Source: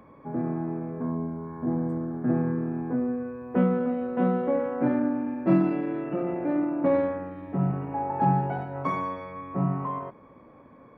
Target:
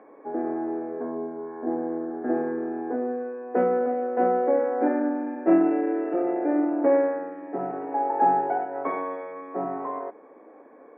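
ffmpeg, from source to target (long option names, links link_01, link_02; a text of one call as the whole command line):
ffmpeg -i in.wav -af "highpass=frequency=290:width=0.5412,highpass=frequency=290:width=1.3066,equalizer=frequency=310:width_type=q:width=4:gain=5,equalizer=frequency=440:width_type=q:width=4:gain=8,equalizer=frequency=740:width_type=q:width=4:gain=9,equalizer=frequency=1100:width_type=q:width=4:gain=-4,equalizer=frequency=1700:width_type=q:width=4:gain=5,lowpass=frequency=2300:width=0.5412,lowpass=frequency=2300:width=1.3066" out.wav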